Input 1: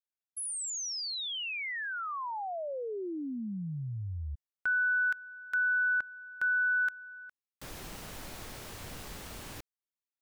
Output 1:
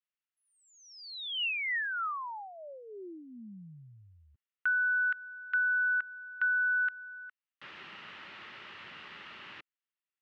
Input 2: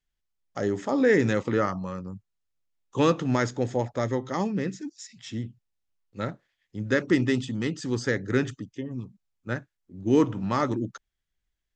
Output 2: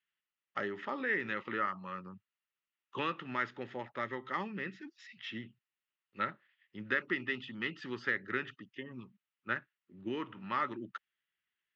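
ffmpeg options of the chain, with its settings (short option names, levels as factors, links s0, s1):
-af "acompressor=threshold=0.0355:ratio=3:attack=70:release=606:knee=1:detection=rms,highpass=270,equalizer=f=280:t=q:w=4:g=-8,equalizer=f=480:t=q:w=4:g=-9,equalizer=f=700:t=q:w=4:g=-9,equalizer=f=1300:t=q:w=4:g=6,equalizer=f=1900:t=q:w=4:g=7,equalizer=f=2800:t=q:w=4:g=8,lowpass=f=3700:w=0.5412,lowpass=f=3700:w=1.3066,volume=0.75"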